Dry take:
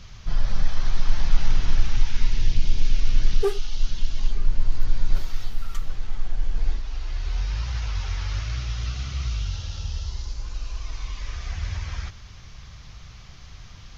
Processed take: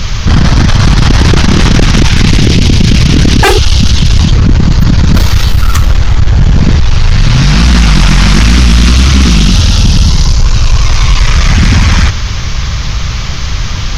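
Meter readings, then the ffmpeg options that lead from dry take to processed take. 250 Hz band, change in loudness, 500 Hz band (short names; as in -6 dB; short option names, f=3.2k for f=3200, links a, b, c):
+33.0 dB, +22.5 dB, +18.0 dB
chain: -af "acontrast=84,bandreject=f=730:w=13,aeval=exprs='0.794*sin(PI/2*7.94*val(0)/0.794)':c=same,volume=1dB"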